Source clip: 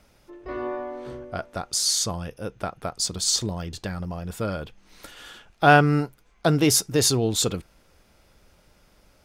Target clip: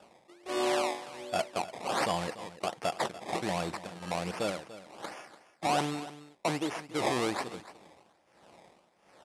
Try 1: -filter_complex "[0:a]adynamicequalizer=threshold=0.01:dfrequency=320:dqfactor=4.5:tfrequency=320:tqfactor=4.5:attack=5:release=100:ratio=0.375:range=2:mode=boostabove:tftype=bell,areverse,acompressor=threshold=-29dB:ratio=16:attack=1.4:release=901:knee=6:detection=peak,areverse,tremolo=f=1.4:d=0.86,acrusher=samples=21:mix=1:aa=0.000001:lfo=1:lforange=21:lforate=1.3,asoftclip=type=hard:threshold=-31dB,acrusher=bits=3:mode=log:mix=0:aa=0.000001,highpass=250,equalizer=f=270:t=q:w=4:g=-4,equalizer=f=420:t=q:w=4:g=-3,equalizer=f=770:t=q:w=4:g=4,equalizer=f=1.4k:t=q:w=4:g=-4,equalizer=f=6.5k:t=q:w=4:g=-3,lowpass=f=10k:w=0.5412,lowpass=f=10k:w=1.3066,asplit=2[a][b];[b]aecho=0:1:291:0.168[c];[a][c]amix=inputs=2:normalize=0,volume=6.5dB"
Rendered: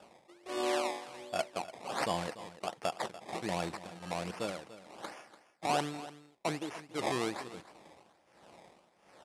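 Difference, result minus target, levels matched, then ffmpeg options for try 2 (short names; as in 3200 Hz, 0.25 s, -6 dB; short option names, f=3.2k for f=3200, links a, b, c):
compressor: peak gain reduction +7 dB
-filter_complex "[0:a]adynamicequalizer=threshold=0.01:dfrequency=320:dqfactor=4.5:tfrequency=320:tqfactor=4.5:attack=5:release=100:ratio=0.375:range=2:mode=boostabove:tftype=bell,areverse,acompressor=threshold=-21.5dB:ratio=16:attack=1.4:release=901:knee=6:detection=peak,areverse,tremolo=f=1.4:d=0.86,acrusher=samples=21:mix=1:aa=0.000001:lfo=1:lforange=21:lforate=1.3,asoftclip=type=hard:threshold=-31dB,acrusher=bits=3:mode=log:mix=0:aa=0.000001,highpass=250,equalizer=f=270:t=q:w=4:g=-4,equalizer=f=420:t=q:w=4:g=-3,equalizer=f=770:t=q:w=4:g=4,equalizer=f=1.4k:t=q:w=4:g=-4,equalizer=f=6.5k:t=q:w=4:g=-3,lowpass=f=10k:w=0.5412,lowpass=f=10k:w=1.3066,asplit=2[a][b];[b]aecho=0:1:291:0.168[c];[a][c]amix=inputs=2:normalize=0,volume=6.5dB"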